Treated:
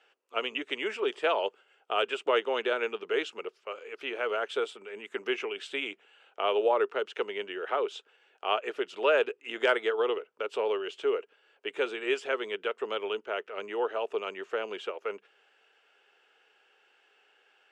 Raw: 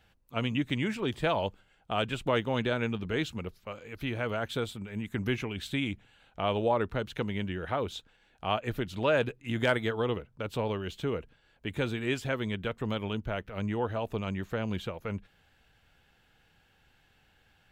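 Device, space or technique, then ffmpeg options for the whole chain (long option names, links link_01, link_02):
phone speaker on a table: -af "highpass=frequency=400:width=0.5412,highpass=frequency=400:width=1.3066,equalizer=frequency=410:width_type=q:width=4:gain=10,equalizer=frequency=1300:width_type=q:width=4:gain=5,equalizer=frequency=2800:width_type=q:width=4:gain=6,equalizer=frequency=4000:width_type=q:width=4:gain=-7,equalizer=frequency=6500:width_type=q:width=4:gain=-3,lowpass=frequency=7900:width=0.5412,lowpass=frequency=7900:width=1.3066"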